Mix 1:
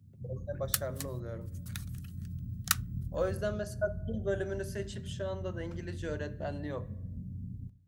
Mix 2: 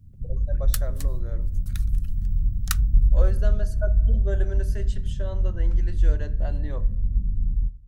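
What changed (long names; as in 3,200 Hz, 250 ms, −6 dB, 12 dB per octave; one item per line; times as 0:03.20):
first sound +3.0 dB
master: remove high-pass filter 99 Hz 24 dB per octave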